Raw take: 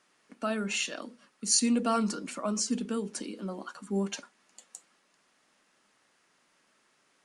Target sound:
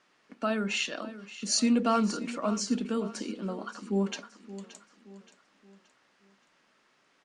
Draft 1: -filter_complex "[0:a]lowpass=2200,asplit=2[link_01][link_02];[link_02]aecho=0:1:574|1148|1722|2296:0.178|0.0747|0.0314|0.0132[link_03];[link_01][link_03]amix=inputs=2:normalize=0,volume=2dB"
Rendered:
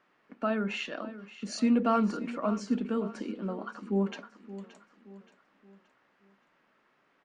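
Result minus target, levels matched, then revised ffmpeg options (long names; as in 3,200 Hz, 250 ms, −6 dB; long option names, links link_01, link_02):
4,000 Hz band −8.0 dB
-filter_complex "[0:a]lowpass=5200,asplit=2[link_01][link_02];[link_02]aecho=0:1:574|1148|1722|2296:0.178|0.0747|0.0314|0.0132[link_03];[link_01][link_03]amix=inputs=2:normalize=0,volume=2dB"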